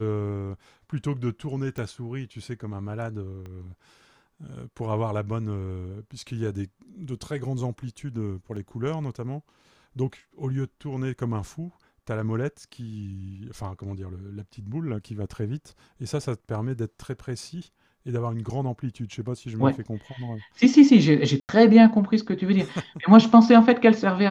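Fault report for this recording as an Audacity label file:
1.780000	1.780000	click −22 dBFS
3.460000	3.460000	click −29 dBFS
8.560000	8.560000	drop-out 4.8 ms
21.400000	21.490000	drop-out 89 ms

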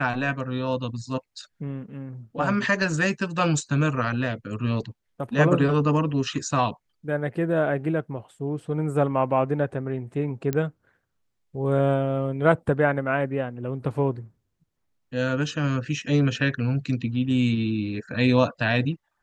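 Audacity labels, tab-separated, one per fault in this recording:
10.530000	10.530000	click −13 dBFS

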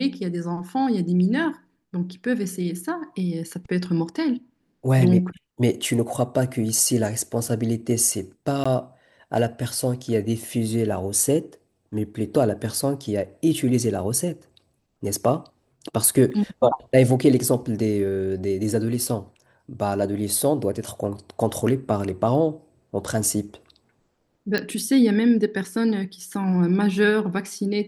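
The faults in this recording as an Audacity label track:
8.640000	8.650000	drop-out 15 ms
16.300000	16.300000	drop-out 2.9 ms
24.580000	24.580000	click −11 dBFS

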